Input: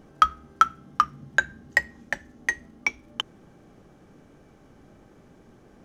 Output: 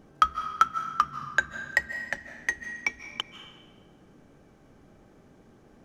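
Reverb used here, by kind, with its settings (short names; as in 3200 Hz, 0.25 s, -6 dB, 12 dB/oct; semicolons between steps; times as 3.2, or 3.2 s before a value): digital reverb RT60 1.3 s, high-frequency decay 0.9×, pre-delay 0.115 s, DRR 10 dB; gain -3 dB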